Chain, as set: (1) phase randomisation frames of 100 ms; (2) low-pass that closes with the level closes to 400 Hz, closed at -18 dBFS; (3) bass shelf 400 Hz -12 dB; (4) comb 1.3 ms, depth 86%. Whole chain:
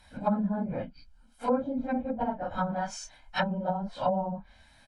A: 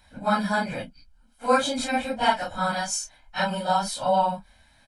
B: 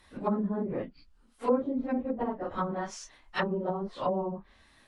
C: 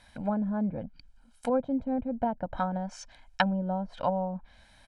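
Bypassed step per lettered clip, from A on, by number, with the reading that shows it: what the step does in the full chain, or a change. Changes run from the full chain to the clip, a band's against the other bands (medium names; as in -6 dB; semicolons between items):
2, 125 Hz band -9.5 dB; 4, 500 Hz band +3.5 dB; 1, 8 kHz band -5.5 dB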